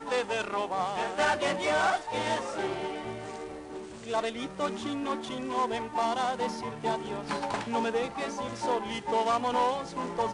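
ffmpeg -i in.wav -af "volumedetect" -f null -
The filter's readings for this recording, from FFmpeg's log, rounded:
mean_volume: -30.8 dB
max_volume: -17.2 dB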